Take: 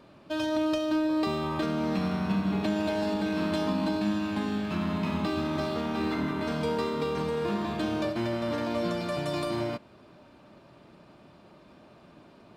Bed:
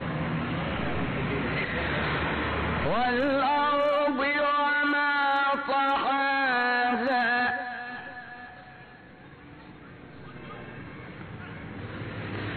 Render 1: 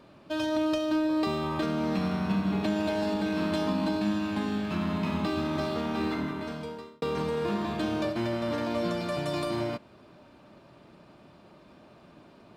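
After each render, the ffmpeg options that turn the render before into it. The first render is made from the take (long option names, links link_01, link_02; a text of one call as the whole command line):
ffmpeg -i in.wav -filter_complex "[0:a]asplit=2[link_01][link_02];[link_01]atrim=end=7.02,asetpts=PTS-STARTPTS,afade=type=out:start_time=6.03:duration=0.99[link_03];[link_02]atrim=start=7.02,asetpts=PTS-STARTPTS,afade=type=in:duration=0.004:curve=hsin[link_04];[link_03][link_04]concat=n=2:v=0:a=1" out.wav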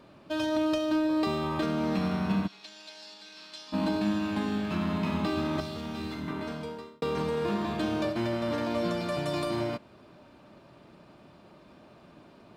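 ffmpeg -i in.wav -filter_complex "[0:a]asplit=3[link_01][link_02][link_03];[link_01]afade=type=out:start_time=2.46:duration=0.02[link_04];[link_02]bandpass=frequency=5100:width_type=q:width=1.9,afade=type=in:start_time=2.46:duration=0.02,afade=type=out:start_time=3.72:duration=0.02[link_05];[link_03]afade=type=in:start_time=3.72:duration=0.02[link_06];[link_04][link_05][link_06]amix=inputs=3:normalize=0,asettb=1/sr,asplit=3[link_07][link_08][link_09];[link_07]atrim=end=5.604[link_10];[link_08]atrim=start=5.6:end=6.28,asetpts=PTS-STARTPTS,afade=type=in:duration=0.004:curve=qsin,afade=type=out:start_time=0.676:duration=0.004:curve=qsin,acrossover=split=180|3000[link_11][link_12][link_13];[link_12]acompressor=threshold=-37dB:ratio=6:attack=3.2:release=140:knee=2.83:detection=peak[link_14];[link_11][link_14][link_13]amix=inputs=3:normalize=0[link_15];[link_09]atrim=start=6.276[link_16];[link_10][link_15]acrossfade=duration=0.004:curve1=hsin:curve2=qsin[link_17];[link_17][link_16]acrossfade=duration=0.004:curve1=qsin:curve2=hsin" out.wav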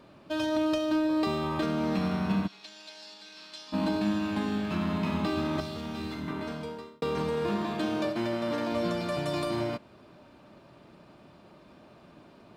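ffmpeg -i in.wav -filter_complex "[0:a]asettb=1/sr,asplit=3[link_01][link_02][link_03];[link_01]atrim=end=7.624[link_04];[link_02]atrim=start=7.62:end=8.72,asetpts=PTS-STARTPTS,afade=type=in:duration=0.004:curve=qsin,afade=type=out:start_time=1.096:duration=0.004:curve=qsin,highpass=140[link_05];[link_03]atrim=start=8.716[link_06];[link_04][link_05]acrossfade=duration=0.004:curve1=hsin:curve2=qsin[link_07];[link_07][link_06]acrossfade=duration=0.004:curve1=qsin:curve2=hsin" out.wav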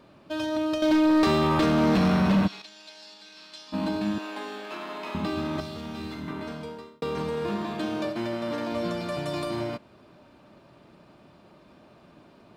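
ffmpeg -i in.wav -filter_complex "[0:a]asettb=1/sr,asplit=3[link_01][link_02][link_03];[link_01]atrim=end=0.824[link_04];[link_02]atrim=start=0.82:end=2.62,asetpts=PTS-STARTPTS,afade=type=in:duration=0.004:curve=qsin,afade=type=out:start_time=1.796:duration=0.004:curve=qsin,aeval=exprs='0.141*sin(PI/2*2*val(0)/0.141)':channel_layout=same[link_05];[link_03]atrim=start=2.616[link_06];[link_04][link_05]acrossfade=duration=0.004:curve1=hsin:curve2=qsin[link_07];[link_07][link_06]acrossfade=duration=0.004:curve1=qsin:curve2=hsin,asettb=1/sr,asplit=3[link_08][link_09][link_10];[link_08]atrim=end=4.184[link_11];[link_09]atrim=start=4.18:end=5.15,asetpts=PTS-STARTPTS,afade=type=in:duration=0.004:curve=qsin,afade=type=out:start_time=0.966:duration=0.004:curve=qsin,highpass=frequency=360:width=0.5412,highpass=frequency=360:width=1.3066[link_12];[link_10]atrim=start=5.146[link_13];[link_11][link_12]acrossfade=duration=0.004:curve1=hsin:curve2=qsin[link_14];[link_14][link_13]acrossfade=duration=0.004:curve1=qsin:curve2=hsin" out.wav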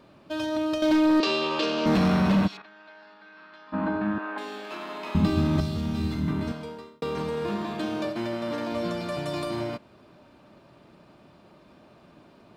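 ffmpeg -i in.wav -filter_complex "[0:a]asettb=1/sr,asplit=3[link_01][link_02][link_03];[link_01]atrim=end=1.204[link_04];[link_02]atrim=start=1.2:end=1.86,asetpts=PTS-STARTPTS,afade=type=in:duration=0.004:curve=qsin,afade=type=out:start_time=0.656:duration=0.004:curve=qsin,highpass=430,equalizer=frequency=500:width_type=q:width=4:gain=5,equalizer=frequency=770:width_type=q:width=4:gain=-9,equalizer=frequency=1300:width_type=q:width=4:gain=-6,equalizer=frequency=2000:width_type=q:width=4:gain=-9,equalizer=frequency=2800:width_type=q:width=4:gain=9,equalizer=frequency=4600:width_type=q:width=4:gain=6,lowpass=frequency=6900:width=0.5412,lowpass=frequency=6900:width=1.3066[link_05];[link_03]atrim=start=1.856[link_06];[link_04][link_05]acrossfade=duration=0.004:curve1=hsin:curve2=qsin[link_07];[link_07][link_06]acrossfade=duration=0.004:curve1=qsin:curve2=hsin,asettb=1/sr,asplit=3[link_08][link_09][link_10];[link_08]atrim=end=2.574[link_11];[link_09]atrim=start=2.57:end=4.38,asetpts=PTS-STARTPTS,afade=type=in:duration=0.004:curve=qsin,afade=type=out:start_time=1.806:duration=0.004:curve=qsin,lowpass=frequency=1500:width_type=q:width=2.4[link_12];[link_10]atrim=start=4.376[link_13];[link_11][link_12]acrossfade=duration=0.004:curve1=hsin:curve2=qsin[link_14];[link_14][link_13]acrossfade=duration=0.004:curve1=qsin:curve2=hsin,asettb=1/sr,asplit=3[link_15][link_16][link_17];[link_15]atrim=end=5.154[link_18];[link_16]atrim=start=5.15:end=6.52,asetpts=PTS-STARTPTS,afade=type=in:duration=0.004:curve=qsin,afade=type=out:start_time=1.366:duration=0.004:curve=qsin,bass=frequency=250:gain=14,treble=frequency=4000:gain=4[link_19];[link_17]atrim=start=6.516[link_20];[link_18][link_19]acrossfade=duration=0.004:curve1=hsin:curve2=qsin[link_21];[link_21][link_20]acrossfade=duration=0.004:curve1=qsin:curve2=hsin" out.wav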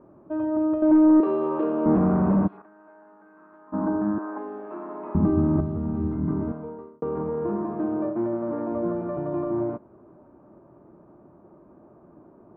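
ffmpeg -i in.wav -af "lowpass=frequency=1200:width=0.5412,lowpass=frequency=1200:width=1.3066,equalizer=frequency=350:width=2.7:gain=7" out.wav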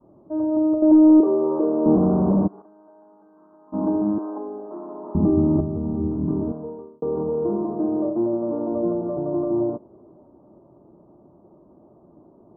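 ffmpeg -i in.wav -af "lowpass=frequency=1000:width=0.5412,lowpass=frequency=1000:width=1.3066,adynamicequalizer=threshold=0.02:dfrequency=410:dqfactor=0.99:tfrequency=410:tqfactor=0.99:attack=5:release=100:ratio=0.375:range=2.5:mode=boostabove:tftype=bell" out.wav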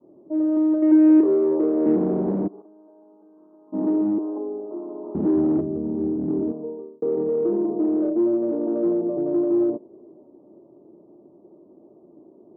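ffmpeg -i in.wav -filter_complex "[0:a]asplit=2[link_01][link_02];[link_02]aeval=exprs='0.0944*(abs(mod(val(0)/0.0944+3,4)-2)-1)':channel_layout=same,volume=-4dB[link_03];[link_01][link_03]amix=inputs=2:normalize=0,bandpass=frequency=370:width_type=q:width=1.7:csg=0" out.wav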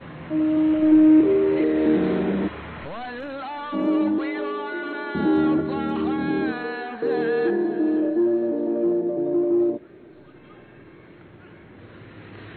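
ffmpeg -i in.wav -i bed.wav -filter_complex "[1:a]volume=-8dB[link_01];[0:a][link_01]amix=inputs=2:normalize=0" out.wav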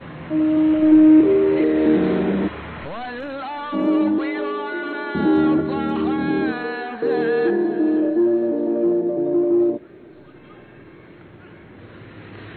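ffmpeg -i in.wav -af "volume=3dB" out.wav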